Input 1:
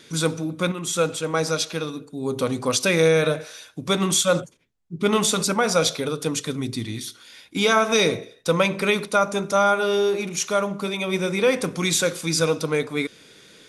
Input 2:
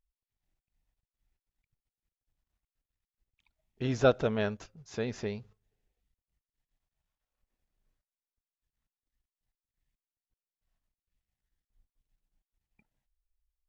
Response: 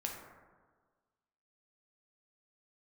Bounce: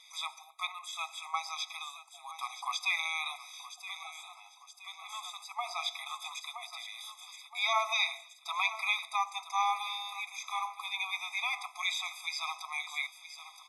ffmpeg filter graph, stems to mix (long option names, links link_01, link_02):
-filter_complex "[0:a]volume=-4.5dB,asplit=2[link_01][link_02];[link_02]volume=-15dB[link_03];[1:a]aecho=1:1:2.3:0.59,volume=-18dB,asplit=4[link_04][link_05][link_06][link_07];[link_05]volume=-4dB[link_08];[link_06]volume=-3.5dB[link_09];[link_07]apad=whole_len=603660[link_10];[link_01][link_10]sidechaincompress=threshold=-57dB:ratio=8:attack=16:release=768[link_11];[2:a]atrim=start_sample=2205[link_12];[link_08][link_12]afir=irnorm=-1:irlink=0[link_13];[link_03][link_09]amix=inputs=2:normalize=0,aecho=0:1:971|1942|2913|3884|4855|5826:1|0.41|0.168|0.0689|0.0283|0.0116[link_14];[link_11][link_04][link_13][link_14]amix=inputs=4:normalize=0,acrossover=split=4300[link_15][link_16];[link_16]acompressor=threshold=-46dB:ratio=4:attack=1:release=60[link_17];[link_15][link_17]amix=inputs=2:normalize=0,highpass=630,afftfilt=real='re*eq(mod(floor(b*sr/1024/660),2),1)':imag='im*eq(mod(floor(b*sr/1024/660),2),1)':win_size=1024:overlap=0.75"